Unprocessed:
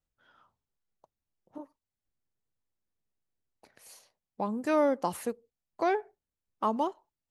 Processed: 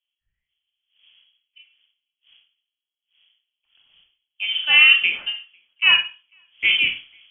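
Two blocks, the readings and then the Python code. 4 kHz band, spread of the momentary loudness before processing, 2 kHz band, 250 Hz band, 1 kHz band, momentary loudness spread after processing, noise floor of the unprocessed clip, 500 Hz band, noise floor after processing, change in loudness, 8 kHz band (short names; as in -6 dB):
+35.5 dB, 22 LU, +26.0 dB, under -15 dB, -5.5 dB, 19 LU, under -85 dBFS, under -15 dB, under -85 dBFS, +15.0 dB, under -20 dB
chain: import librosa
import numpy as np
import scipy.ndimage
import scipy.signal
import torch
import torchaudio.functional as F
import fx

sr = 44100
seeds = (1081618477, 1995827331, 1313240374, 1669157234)

y = fx.dmg_wind(x, sr, seeds[0], corner_hz=430.0, level_db=-50.0)
y = y + 10.0 ** (-22.5 / 20.0) * np.pad(y, (int(500 * sr / 1000.0), 0))[:len(y)]
y = fx.rev_schroeder(y, sr, rt60_s=0.41, comb_ms=32, drr_db=4.5)
y = fx.freq_invert(y, sr, carrier_hz=3300)
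y = fx.band_widen(y, sr, depth_pct=100)
y = y * 10.0 ** (4.0 / 20.0)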